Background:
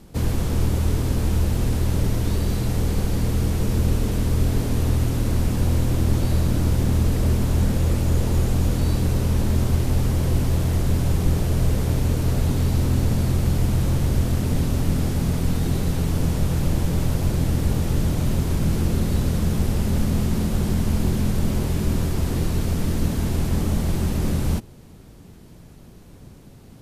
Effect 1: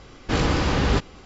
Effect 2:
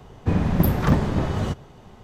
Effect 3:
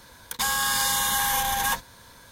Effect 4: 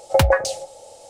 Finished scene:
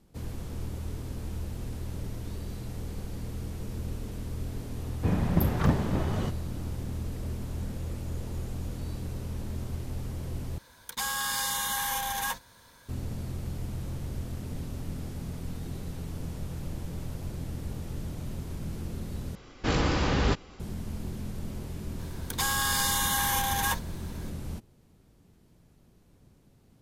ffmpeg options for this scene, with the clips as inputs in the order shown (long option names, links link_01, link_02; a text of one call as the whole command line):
ffmpeg -i bed.wav -i cue0.wav -i cue1.wav -i cue2.wav -filter_complex "[3:a]asplit=2[link_01][link_02];[0:a]volume=-15dB,asplit=3[link_03][link_04][link_05];[link_03]atrim=end=10.584[link_06];[link_01]atrim=end=2.31,asetpts=PTS-STARTPTS,volume=-6.5dB[link_07];[link_04]atrim=start=12.886:end=19.354[link_08];[1:a]atrim=end=1.25,asetpts=PTS-STARTPTS,volume=-4.5dB[link_09];[link_05]atrim=start=20.596[link_10];[2:a]atrim=end=2.03,asetpts=PTS-STARTPTS,volume=-6dB,afade=type=in:duration=0.004:curve=hsin,afade=type=out:start_time=2.026:duration=0.004:curve=hsin,adelay=210357S[link_11];[link_02]atrim=end=2.31,asetpts=PTS-STARTPTS,volume=-3.5dB,afade=type=in:duration=0.004:curve=hsin,afade=type=out:start_time=2.306:duration=0.004:curve=hsin,adelay=21990[link_12];[link_06][link_07]acrossfade=duration=0.004:curve1=hsin:curve2=hsin[link_13];[link_13][link_08]acrossfade=duration=0.004:curve1=hsin:curve2=hsin[link_14];[link_14][link_09]acrossfade=duration=0.004:curve1=hsin:curve2=hsin[link_15];[link_15][link_10]acrossfade=duration=0.004:curve1=hsin:curve2=hsin[link_16];[link_16][link_11][link_12]amix=inputs=3:normalize=0" out.wav